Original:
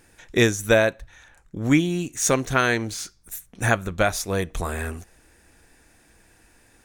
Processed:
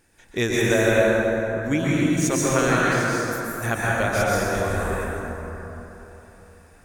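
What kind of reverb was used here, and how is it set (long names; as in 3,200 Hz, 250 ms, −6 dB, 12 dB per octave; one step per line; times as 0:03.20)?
dense smooth reverb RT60 3.7 s, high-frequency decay 0.4×, pre-delay 110 ms, DRR −7 dB
level −6 dB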